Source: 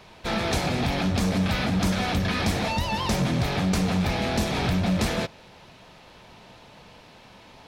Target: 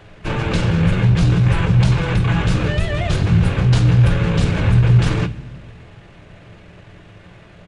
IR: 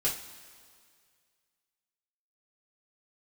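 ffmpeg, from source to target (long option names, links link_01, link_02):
-filter_complex "[0:a]asetrate=29433,aresample=44100,atempo=1.49831,asplit=2[link_01][link_02];[link_02]lowshelf=frequency=300:width_type=q:width=1.5:gain=13[link_03];[1:a]atrim=start_sample=2205[link_04];[link_03][link_04]afir=irnorm=-1:irlink=0,volume=-15dB[link_05];[link_01][link_05]amix=inputs=2:normalize=0,volume=2.5dB"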